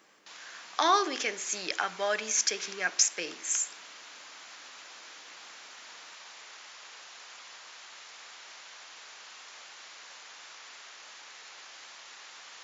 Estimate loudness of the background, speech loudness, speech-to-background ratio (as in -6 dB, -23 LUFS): -46.5 LUFS, -28.5 LUFS, 18.0 dB